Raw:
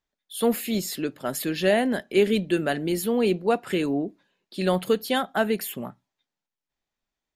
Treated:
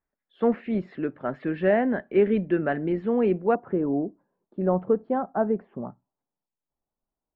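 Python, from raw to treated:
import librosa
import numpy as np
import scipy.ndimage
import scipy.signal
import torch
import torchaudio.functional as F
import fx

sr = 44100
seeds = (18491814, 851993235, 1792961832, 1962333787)

y = fx.lowpass(x, sr, hz=fx.steps((0.0, 1900.0), (3.55, 1100.0)), slope=24)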